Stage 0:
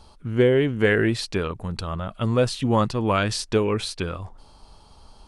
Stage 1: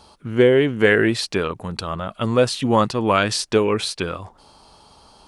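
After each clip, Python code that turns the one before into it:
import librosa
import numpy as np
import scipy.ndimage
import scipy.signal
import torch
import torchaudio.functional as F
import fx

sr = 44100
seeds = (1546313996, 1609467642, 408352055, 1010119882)

y = fx.highpass(x, sr, hz=210.0, slope=6)
y = F.gain(torch.from_numpy(y), 5.0).numpy()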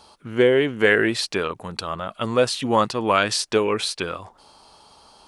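y = fx.low_shelf(x, sr, hz=260.0, db=-8.5)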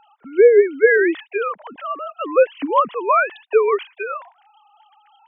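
y = fx.sine_speech(x, sr)
y = F.gain(torch.from_numpy(y), 4.0).numpy()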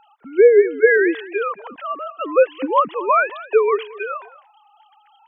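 y = x + 10.0 ** (-19.0 / 20.0) * np.pad(x, (int(224 * sr / 1000.0), 0))[:len(x)]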